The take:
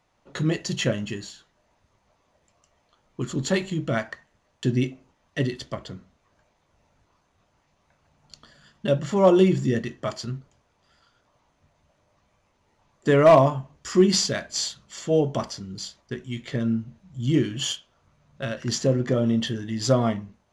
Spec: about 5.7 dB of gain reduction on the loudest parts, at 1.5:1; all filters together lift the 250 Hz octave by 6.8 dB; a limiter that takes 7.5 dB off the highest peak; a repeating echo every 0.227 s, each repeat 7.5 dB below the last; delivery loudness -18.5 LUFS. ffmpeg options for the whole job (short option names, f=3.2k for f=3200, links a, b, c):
-af "equalizer=f=250:t=o:g=9,acompressor=threshold=-24dB:ratio=1.5,alimiter=limit=-15.5dB:level=0:latency=1,aecho=1:1:227|454|681|908|1135:0.422|0.177|0.0744|0.0312|0.0131,volume=8dB"